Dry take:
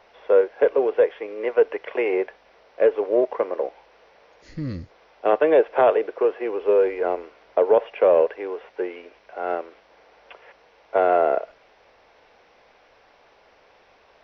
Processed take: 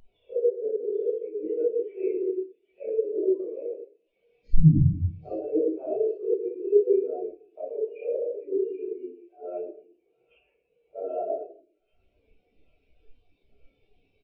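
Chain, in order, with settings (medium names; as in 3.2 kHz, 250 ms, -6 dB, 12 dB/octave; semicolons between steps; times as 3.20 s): upward compressor, threshold -30 dBFS; high-order bell 1 kHz -13 dB 2.3 oct; compression 20:1, threshold -33 dBFS, peak gain reduction 15.5 dB; doubling 32 ms -8 dB; simulated room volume 540 m³, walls mixed, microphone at 6.1 m; short-mantissa float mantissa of 2-bit; 8.90–11.16 s: treble shelf 2.6 kHz -5 dB; feedback echo behind a high-pass 785 ms, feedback 64%, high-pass 1.9 kHz, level -4 dB; spectral contrast expander 2.5:1; trim +6 dB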